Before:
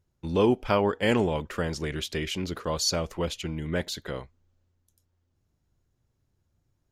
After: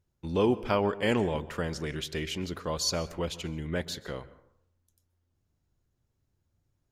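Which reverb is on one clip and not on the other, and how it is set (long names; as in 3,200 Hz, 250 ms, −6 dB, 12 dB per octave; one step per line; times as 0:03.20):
dense smooth reverb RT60 0.68 s, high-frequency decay 0.45×, pre-delay 115 ms, DRR 17 dB
level −3 dB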